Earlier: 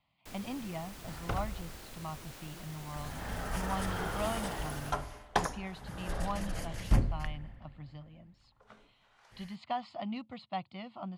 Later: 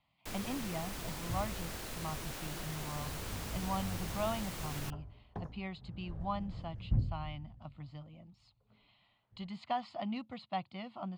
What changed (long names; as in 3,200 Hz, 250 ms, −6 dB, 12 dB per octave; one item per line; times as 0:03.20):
first sound +6.0 dB
second sound: add resonant band-pass 100 Hz, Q 1.2